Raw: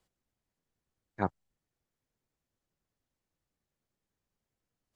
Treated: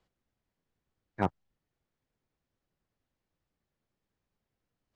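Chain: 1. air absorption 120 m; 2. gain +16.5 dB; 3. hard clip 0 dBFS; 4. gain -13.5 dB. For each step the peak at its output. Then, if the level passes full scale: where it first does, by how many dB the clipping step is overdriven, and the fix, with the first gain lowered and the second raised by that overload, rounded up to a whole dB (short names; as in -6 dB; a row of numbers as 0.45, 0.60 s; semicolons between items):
-12.5, +4.0, 0.0, -13.5 dBFS; step 2, 4.0 dB; step 2 +12.5 dB, step 4 -9.5 dB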